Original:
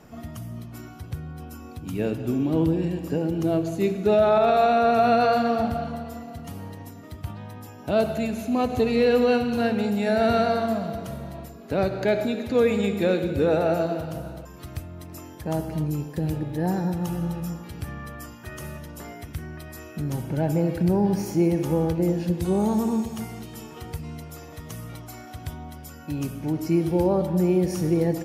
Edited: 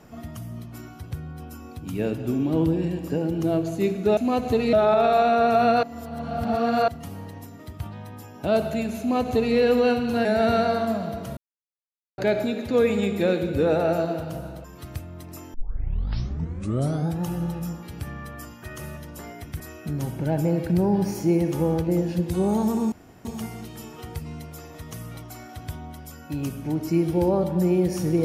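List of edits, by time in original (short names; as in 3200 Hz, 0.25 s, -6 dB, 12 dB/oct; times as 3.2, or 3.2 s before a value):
5.27–6.32 reverse
8.44–9 copy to 4.17
9.69–10.06 cut
11.18–11.99 mute
15.35 tape start 1.68 s
19.41–19.71 cut
23.03 insert room tone 0.33 s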